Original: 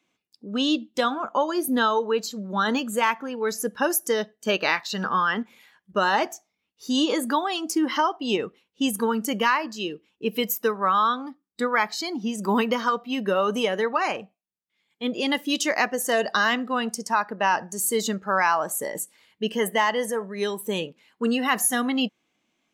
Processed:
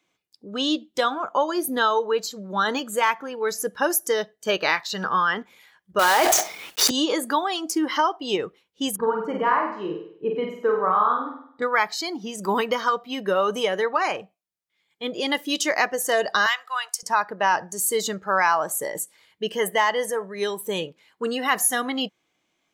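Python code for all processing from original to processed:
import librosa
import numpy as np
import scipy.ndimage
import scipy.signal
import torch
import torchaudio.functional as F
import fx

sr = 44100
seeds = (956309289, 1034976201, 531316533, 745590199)

y = fx.chain(x, sr, fx.block_float(bits=3),
    fx.bass_treble(bass_db=-13, treble_db=-3),
    fx.env_flatten(amount_pct=100), at=(5.99, 6.91))
y = fx.chain(y, sr, fx.lowpass(hz=1200.0, slope=12),
    fx.doubler(ms=38.0, db=-6),
    fx.room_flutter(wall_m=8.5, rt60_s=0.62), at=(8.96, 11.62))
y = fx.chain(y, sr, fx.highpass(hz=930.0, slope=24),
    fx.high_shelf(hz=6900.0, db=6.0), at=(16.46, 17.03))
y = fx.peak_eq(y, sr, hz=230.0, db=-10.0, octaves=0.44)
y = fx.notch(y, sr, hz=2700.0, q=15.0)
y = y * librosa.db_to_amplitude(1.5)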